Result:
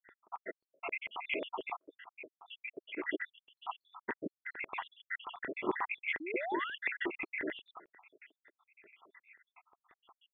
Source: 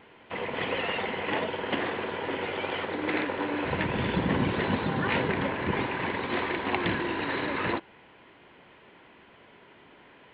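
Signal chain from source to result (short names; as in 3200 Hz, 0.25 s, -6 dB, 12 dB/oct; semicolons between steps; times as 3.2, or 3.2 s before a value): random spectral dropouts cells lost 85%; thirty-one-band EQ 500 Hz -11 dB, 1250 Hz +6 dB, 2000 Hz +6 dB; 1.76–2.48 compressor 6:1, threshold -47 dBFS, peak gain reduction 13.5 dB; rotary speaker horn 7.5 Hz; LFO high-pass square 5.6 Hz 380–2000 Hz; 6.2–6.75 painted sound rise 290–1800 Hz -38 dBFS; rippled Chebyshev low-pass 3500 Hz, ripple 6 dB; gain +1 dB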